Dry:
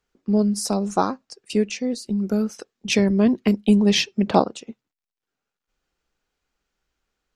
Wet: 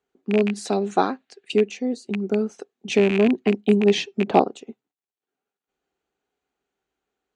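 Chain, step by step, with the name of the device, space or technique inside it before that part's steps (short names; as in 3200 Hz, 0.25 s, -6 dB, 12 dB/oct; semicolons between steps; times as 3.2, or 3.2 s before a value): 0.49–1.52 band shelf 2500 Hz +11.5 dB; car door speaker with a rattle (rattling part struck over -21 dBFS, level -11 dBFS; speaker cabinet 83–8300 Hz, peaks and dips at 100 Hz -7 dB, 270 Hz +5 dB, 400 Hz +10 dB, 750 Hz +8 dB, 5200 Hz -9 dB); gain -4.5 dB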